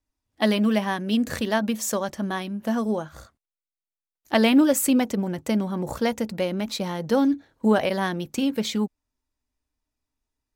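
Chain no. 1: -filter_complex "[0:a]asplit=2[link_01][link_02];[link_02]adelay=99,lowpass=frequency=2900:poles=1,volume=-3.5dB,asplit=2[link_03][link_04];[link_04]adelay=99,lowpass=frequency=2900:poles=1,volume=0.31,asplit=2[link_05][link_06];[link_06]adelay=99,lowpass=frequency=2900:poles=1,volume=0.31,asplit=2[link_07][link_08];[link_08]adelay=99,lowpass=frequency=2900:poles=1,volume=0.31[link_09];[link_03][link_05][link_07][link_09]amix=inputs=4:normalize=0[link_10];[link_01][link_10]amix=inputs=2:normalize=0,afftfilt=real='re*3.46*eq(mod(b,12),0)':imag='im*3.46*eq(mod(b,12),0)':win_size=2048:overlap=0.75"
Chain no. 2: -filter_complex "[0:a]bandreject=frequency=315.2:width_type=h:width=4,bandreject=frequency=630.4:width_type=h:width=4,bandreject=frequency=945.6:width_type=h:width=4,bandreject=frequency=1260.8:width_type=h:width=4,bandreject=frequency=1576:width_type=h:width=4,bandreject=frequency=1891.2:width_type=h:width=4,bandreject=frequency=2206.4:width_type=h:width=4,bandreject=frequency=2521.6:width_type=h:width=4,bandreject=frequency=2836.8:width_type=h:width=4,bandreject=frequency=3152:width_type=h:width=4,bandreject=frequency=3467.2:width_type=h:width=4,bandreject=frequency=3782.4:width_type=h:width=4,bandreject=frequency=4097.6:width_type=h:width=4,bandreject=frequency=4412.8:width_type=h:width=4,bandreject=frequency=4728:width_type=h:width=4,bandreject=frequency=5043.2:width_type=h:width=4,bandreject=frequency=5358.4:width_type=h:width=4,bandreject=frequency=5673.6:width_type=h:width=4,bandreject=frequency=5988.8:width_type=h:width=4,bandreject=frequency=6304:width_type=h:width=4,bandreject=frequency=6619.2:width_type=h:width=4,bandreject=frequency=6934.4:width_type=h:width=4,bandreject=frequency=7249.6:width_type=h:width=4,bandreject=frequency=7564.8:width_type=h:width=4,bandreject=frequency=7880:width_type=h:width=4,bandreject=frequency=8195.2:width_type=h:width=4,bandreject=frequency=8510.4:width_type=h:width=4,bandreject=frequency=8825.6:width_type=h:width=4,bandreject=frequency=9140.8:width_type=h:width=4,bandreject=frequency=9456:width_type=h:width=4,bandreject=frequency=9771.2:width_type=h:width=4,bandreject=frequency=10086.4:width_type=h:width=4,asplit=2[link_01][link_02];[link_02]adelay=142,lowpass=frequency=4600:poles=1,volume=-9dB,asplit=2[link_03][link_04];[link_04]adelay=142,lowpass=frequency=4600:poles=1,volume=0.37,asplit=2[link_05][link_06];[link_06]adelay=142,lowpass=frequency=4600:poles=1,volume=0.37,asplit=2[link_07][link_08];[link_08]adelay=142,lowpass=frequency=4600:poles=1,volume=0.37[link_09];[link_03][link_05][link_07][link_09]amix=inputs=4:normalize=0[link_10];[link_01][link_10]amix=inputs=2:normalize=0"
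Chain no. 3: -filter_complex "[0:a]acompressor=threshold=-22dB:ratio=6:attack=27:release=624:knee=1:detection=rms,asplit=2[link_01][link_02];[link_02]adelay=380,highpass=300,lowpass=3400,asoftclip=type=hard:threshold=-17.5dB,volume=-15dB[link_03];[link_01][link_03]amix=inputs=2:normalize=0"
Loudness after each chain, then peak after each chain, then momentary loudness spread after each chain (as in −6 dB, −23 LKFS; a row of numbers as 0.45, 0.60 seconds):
−23.0, −23.5, −28.0 LKFS; −4.0, −7.5, −9.5 dBFS; 19, 9, 4 LU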